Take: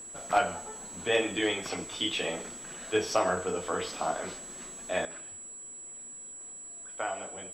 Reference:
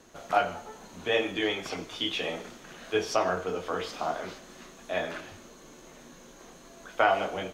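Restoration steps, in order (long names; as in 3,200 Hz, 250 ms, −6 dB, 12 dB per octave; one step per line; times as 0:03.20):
clipped peaks rebuilt −14.5 dBFS
notch filter 7,800 Hz, Q 30
level 0 dB, from 0:05.05 +11 dB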